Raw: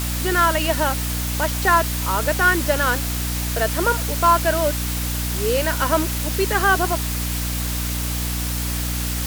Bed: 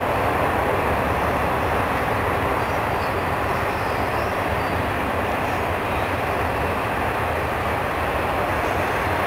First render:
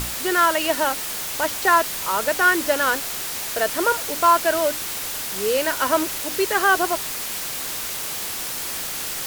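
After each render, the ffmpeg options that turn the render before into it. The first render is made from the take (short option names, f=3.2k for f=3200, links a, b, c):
-af "bandreject=f=60:t=h:w=6,bandreject=f=120:t=h:w=6,bandreject=f=180:t=h:w=6,bandreject=f=240:t=h:w=6,bandreject=f=300:t=h:w=6"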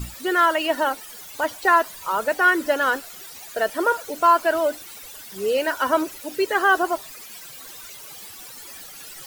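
-af "afftdn=nr=16:nf=-29"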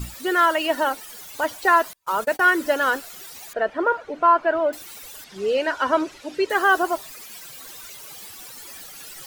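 -filter_complex "[0:a]asettb=1/sr,asplit=3[a][b][c];[a]atrim=end=1.934[d];[b]atrim=start=1.93:end=2.5,asetpts=PTS-STARTPTS,afade=t=in:d=0.004:c=qsin,afade=t=out:st=0.566:d=0.004:c=qsin,agate=range=-36dB:threshold=-32dB:ratio=16:release=100:detection=peak[e];[c]atrim=start=2.496[f];[d][e]acrossfade=d=0.004:c1=hsin:c2=qsin[g];[g][f]acrossfade=d=0.004:c1=qsin:c2=hsin,asettb=1/sr,asplit=3[h][i][j];[h]atrim=end=3.534[k];[i]atrim=start=3.53:end=4.73,asetpts=PTS-STARTPTS,afade=t=in:d=0.004:c=qsin,afade=t=out:st=1.196:d=0.004:c=qsin,lowpass=2.1k[l];[j]atrim=start=4.726[m];[k][l]acrossfade=d=0.004:c1=hsin:c2=qsin[n];[n][m]acrossfade=d=0.004:c1=qsin:c2=hsin,asettb=1/sr,asplit=3[o][p][q];[o]atrim=end=5.244[r];[p]atrim=start=5.24:end=6.5,asetpts=PTS-STARTPTS,afade=t=in:d=0.004:c=qsin,afade=t=out:st=1.256:d=0.004:c=qsin,lowpass=5.1k[s];[q]atrim=start=6.496[t];[r][s]acrossfade=d=0.004:c1=hsin:c2=qsin[u];[u][t]acrossfade=d=0.004:c1=qsin:c2=hsin"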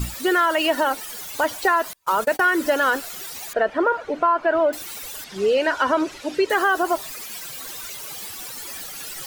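-filter_complex "[0:a]asplit=2[a][b];[b]alimiter=limit=-16dB:level=0:latency=1:release=16,volume=-1dB[c];[a][c]amix=inputs=2:normalize=0,acompressor=threshold=-16dB:ratio=3"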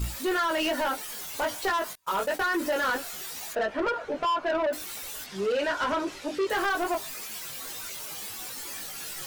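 -af "flanger=delay=18.5:depth=2.2:speed=0.25,asoftclip=type=tanh:threshold=-22.5dB"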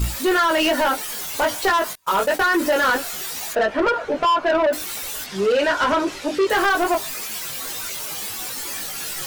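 -af "volume=8.5dB"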